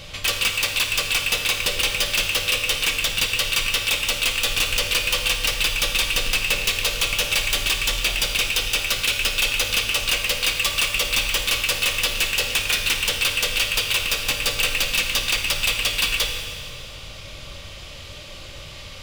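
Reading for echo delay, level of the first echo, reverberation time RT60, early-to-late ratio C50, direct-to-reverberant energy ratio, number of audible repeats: none, none, 2.1 s, 5.0 dB, 4.5 dB, none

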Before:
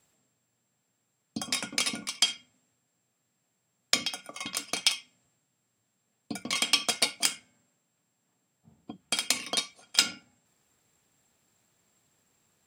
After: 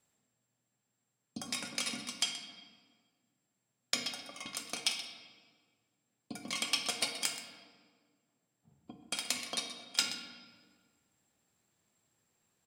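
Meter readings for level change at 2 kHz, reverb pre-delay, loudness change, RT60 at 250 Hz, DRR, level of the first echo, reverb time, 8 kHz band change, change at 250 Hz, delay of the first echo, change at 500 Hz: -7.0 dB, 4 ms, -7.5 dB, 2.2 s, 4.5 dB, -13.5 dB, 1.7 s, -7.0 dB, -6.0 dB, 0.127 s, -6.5 dB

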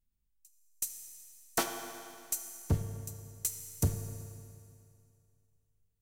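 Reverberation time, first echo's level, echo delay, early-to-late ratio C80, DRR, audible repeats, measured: 2.4 s, none, none, 7.5 dB, 5.0 dB, none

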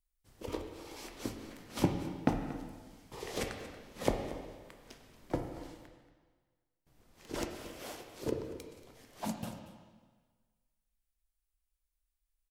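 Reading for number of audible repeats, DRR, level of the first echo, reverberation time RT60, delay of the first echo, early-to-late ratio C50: 1, 3.5 dB, -15.5 dB, 1.5 s, 0.232 s, 5.5 dB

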